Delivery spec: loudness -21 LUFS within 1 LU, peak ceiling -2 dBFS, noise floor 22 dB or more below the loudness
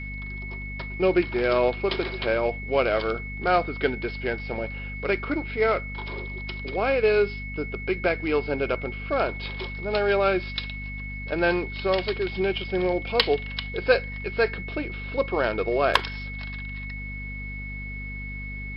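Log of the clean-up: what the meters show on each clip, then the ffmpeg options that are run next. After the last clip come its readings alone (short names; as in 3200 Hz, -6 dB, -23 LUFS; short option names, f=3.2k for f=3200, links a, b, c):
hum 50 Hz; harmonics up to 250 Hz; hum level -33 dBFS; steady tone 2200 Hz; tone level -36 dBFS; loudness -26.5 LUFS; peak -5.0 dBFS; loudness target -21.0 LUFS
-> -af "bandreject=f=50:t=h:w=6,bandreject=f=100:t=h:w=6,bandreject=f=150:t=h:w=6,bandreject=f=200:t=h:w=6,bandreject=f=250:t=h:w=6"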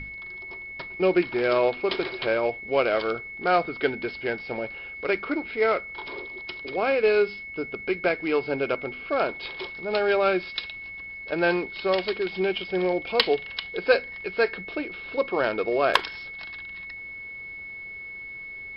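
hum none; steady tone 2200 Hz; tone level -36 dBFS
-> -af "bandreject=f=2.2k:w=30"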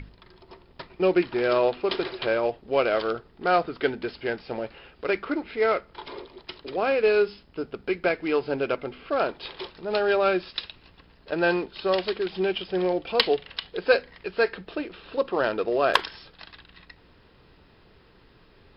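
steady tone none; loudness -26.0 LUFS; peak -4.5 dBFS; loudness target -21.0 LUFS
-> -af "volume=5dB,alimiter=limit=-2dB:level=0:latency=1"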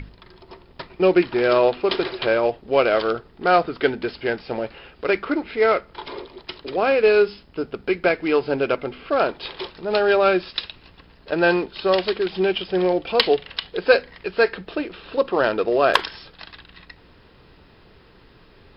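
loudness -21.0 LUFS; peak -2.0 dBFS; noise floor -51 dBFS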